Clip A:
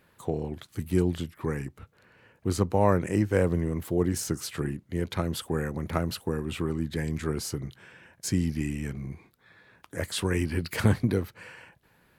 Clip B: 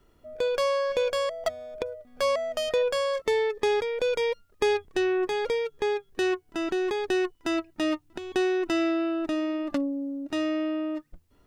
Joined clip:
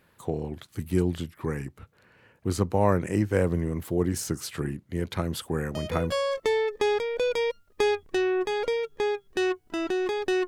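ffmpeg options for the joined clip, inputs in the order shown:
-filter_complex "[1:a]asplit=2[a][b];[0:a]apad=whole_dur=10.47,atrim=end=10.47,atrim=end=6.122[c];[b]atrim=start=2.938:end=7.29[d];[a]atrim=start=2.53:end=2.94,asetpts=PTS-STARTPTS,volume=-8dB,afade=t=in:d=0.004:c=hsin,afade=t=out:st=0.406:d=0.004:c=hsin,adelay=5710[e];[c][d]acrossfade=d=0.004:c1=hsin:c2=hsin[f];[f][e]amix=inputs=2:normalize=0"

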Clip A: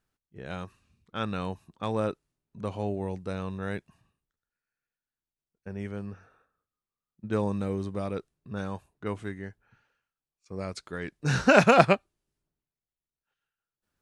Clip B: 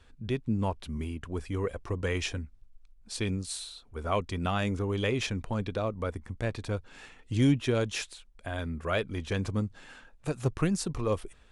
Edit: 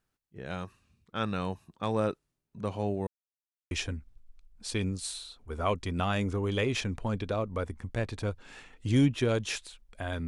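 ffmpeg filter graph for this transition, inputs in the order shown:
-filter_complex "[0:a]apad=whole_dur=10.27,atrim=end=10.27,asplit=2[a][b];[a]atrim=end=3.07,asetpts=PTS-STARTPTS,afade=t=out:st=3.066:d=0.004:c=hsin[c];[b]atrim=start=3.07:end=3.71,asetpts=PTS-STARTPTS,volume=0[d];[1:a]atrim=start=2.17:end=8.73,asetpts=PTS-STARTPTS,afade=t=in:d=0.004:c=hsin[e];[c][d][e]concat=n=3:v=0:a=1"

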